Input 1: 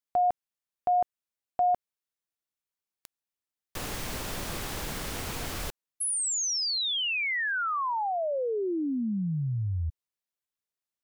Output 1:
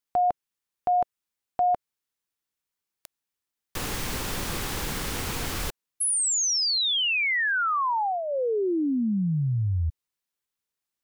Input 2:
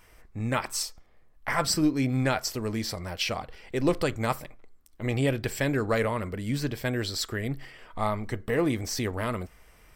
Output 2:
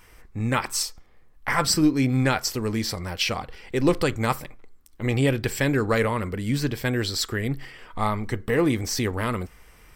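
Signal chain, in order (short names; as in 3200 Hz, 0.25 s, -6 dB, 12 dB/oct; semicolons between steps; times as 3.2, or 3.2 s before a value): bell 640 Hz -6.5 dB 0.28 oct; gain +4.5 dB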